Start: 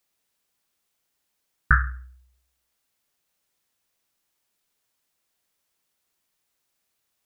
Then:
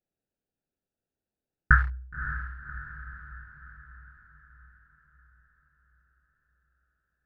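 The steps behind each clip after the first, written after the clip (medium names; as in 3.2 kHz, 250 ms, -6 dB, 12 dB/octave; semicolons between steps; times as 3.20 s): local Wiener filter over 41 samples; band-stop 1.2 kHz, Q 13; echo that smears into a reverb 566 ms, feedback 53%, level -11 dB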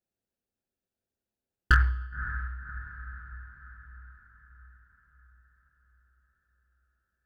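comb of notches 150 Hz; overload inside the chain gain 12 dB; on a send at -18.5 dB: reverberation RT60 1.0 s, pre-delay 64 ms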